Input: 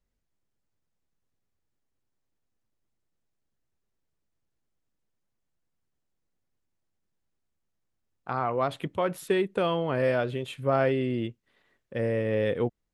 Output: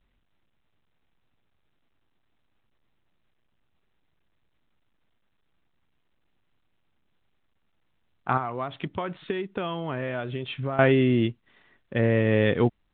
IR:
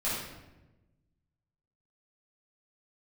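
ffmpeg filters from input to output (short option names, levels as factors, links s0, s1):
-filter_complex "[0:a]equalizer=f=510:t=o:w=0.44:g=-7.5,asettb=1/sr,asplit=3[s0][s1][s2];[s0]atrim=end=8.374[s3];[s1]atrim=start=8.37:end=10.79,asetpts=PTS-STARTPTS,afade=t=in:d=0.004:c=qsin,afade=t=out:st=2.416:d=0.004:c=qsin,acompressor=threshold=0.0178:ratio=10[s4];[s2]atrim=start=10.786[s5];[s3][s4]acrossfade=d=0.004:c1=hsin:c2=qsin[s6];[s6][s5]acrossfade=d=0.004:c1=qsin:c2=hsin,volume=2.51" -ar 8000 -c:a pcm_mulaw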